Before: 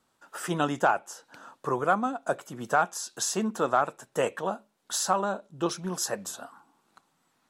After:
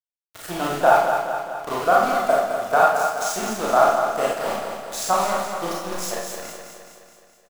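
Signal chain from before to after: high-pass 110 Hz 12 dB/octave; peaking EQ 680 Hz +10.5 dB 0.2 oct; hum notches 50/100/150/200 Hz; in parallel at +2 dB: level held to a coarse grid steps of 21 dB; on the sum: small samples zeroed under -26 dBFS; feedback delay 211 ms, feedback 58%, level -7 dB; Schroeder reverb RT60 0.58 s, combs from 27 ms, DRR -3.5 dB; trim -4.5 dB

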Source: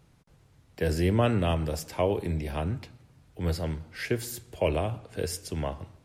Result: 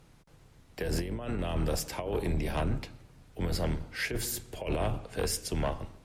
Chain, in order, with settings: octave divider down 2 oct, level +1 dB; bass shelf 200 Hz -6 dB; compressor with a negative ratio -29 dBFS, ratio -0.5; sine folder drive 5 dB, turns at -16 dBFS; trim -7.5 dB

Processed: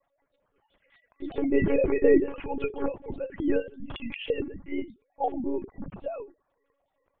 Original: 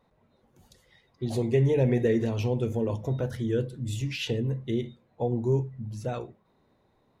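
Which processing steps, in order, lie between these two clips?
formants replaced by sine waves; 1.37–3.57 s: dynamic bell 340 Hz, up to +5 dB, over -32 dBFS, Q 0.86; monotone LPC vocoder at 8 kHz 280 Hz

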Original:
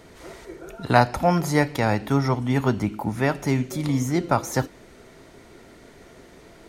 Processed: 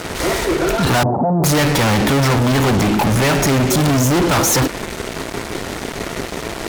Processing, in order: fuzz box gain 43 dB, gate -48 dBFS; 1.03–1.44 s: elliptic band-pass 110–850 Hz, stop band 50 dB

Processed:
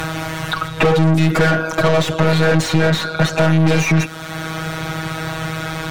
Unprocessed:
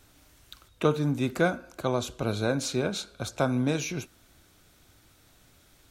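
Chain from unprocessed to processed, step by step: robot voice 160 Hz; resonant low shelf 190 Hz +7 dB, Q 1.5; overdrive pedal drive 40 dB, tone 1.7 kHz, clips at -8 dBFS; three bands compressed up and down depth 70%; trim +2.5 dB

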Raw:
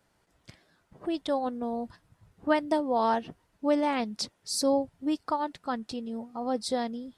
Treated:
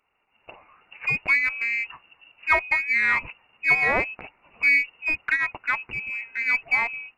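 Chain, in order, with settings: level rider gain up to 15 dB; ten-band graphic EQ 125 Hz -4 dB, 250 Hz -10 dB, 1 kHz -7 dB, 2 kHz +7 dB; frequency inversion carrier 2.8 kHz; in parallel at -11 dB: one-sided clip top -25.5 dBFS; on the sum: trim -4.5 dB

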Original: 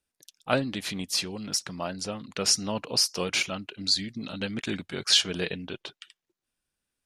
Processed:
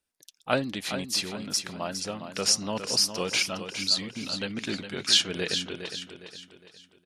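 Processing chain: bass shelf 160 Hz -4.5 dB; on a send: feedback delay 410 ms, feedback 40%, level -9 dB

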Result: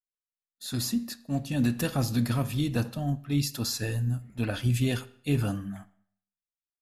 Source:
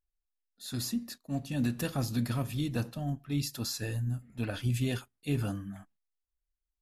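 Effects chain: expander -51 dBFS; on a send: treble shelf 6.6 kHz -11 dB + reverberation RT60 0.60 s, pre-delay 38 ms, DRR 17 dB; on the sum: trim +4.5 dB

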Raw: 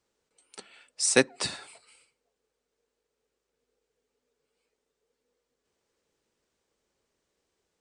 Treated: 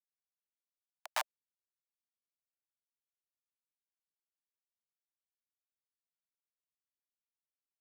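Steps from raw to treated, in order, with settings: Schmitt trigger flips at -14 dBFS; steep high-pass 620 Hz 96 dB/octave; trim +16 dB

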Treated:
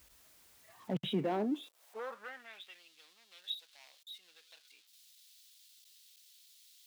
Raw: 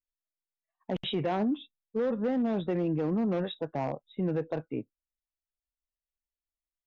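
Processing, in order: jump at every zero crossing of -45 dBFS; high-pass sweep 62 Hz -> 3.7 kHz, 0.52–2.83 s; trim -6.5 dB

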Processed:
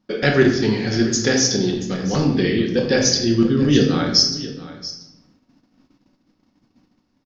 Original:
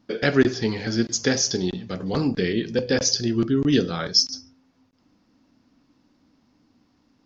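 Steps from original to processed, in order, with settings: on a send: delay 682 ms -16 dB; on the sum: simulated room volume 300 m³, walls mixed, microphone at 1 m; gate -57 dBFS, range -9 dB; trim +2 dB

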